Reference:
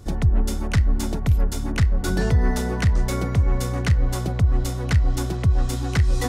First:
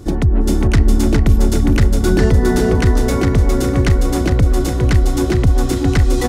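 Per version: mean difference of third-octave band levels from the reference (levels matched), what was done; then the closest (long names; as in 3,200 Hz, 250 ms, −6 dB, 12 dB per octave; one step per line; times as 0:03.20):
4.5 dB: parametric band 320 Hz +10.5 dB 0.74 octaves
in parallel at 0 dB: brickwall limiter −15 dBFS, peak gain reduction 7 dB
on the sum: repeating echo 409 ms, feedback 37%, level −4 dB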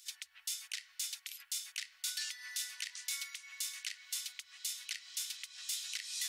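23.0 dB: inverse Chebyshev high-pass filter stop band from 430 Hz, stop band 80 dB
brickwall limiter −27 dBFS, peak gain reduction 9.5 dB
level +1.5 dB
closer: first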